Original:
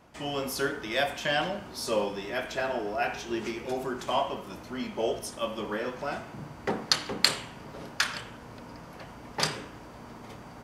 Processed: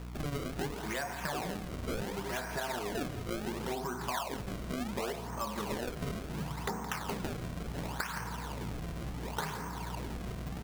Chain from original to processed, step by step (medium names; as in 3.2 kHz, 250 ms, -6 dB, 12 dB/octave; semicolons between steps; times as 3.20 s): cabinet simulation 110–2100 Hz, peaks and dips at 170 Hz +6 dB, 310 Hz -8 dB, 570 Hz -9 dB, 950 Hz +6 dB; hum 60 Hz, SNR 13 dB; decimation with a swept rate 29×, swing 160% 0.7 Hz; in parallel at +1 dB: peak limiter -25.5 dBFS, peak gain reduction 11 dB; on the sum: compression, threshold -32 dBFS, peak gain reduction 13.5 dB; on a send: delay 169 ms -13.5 dB; on the sum: trim -1.5 dB